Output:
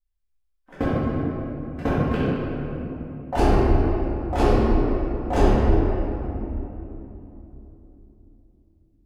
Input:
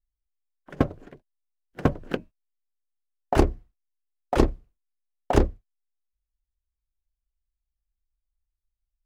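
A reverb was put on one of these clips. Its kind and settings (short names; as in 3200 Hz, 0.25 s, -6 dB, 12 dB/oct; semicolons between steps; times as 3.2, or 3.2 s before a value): shoebox room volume 180 m³, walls hard, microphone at 2 m; gain -8.5 dB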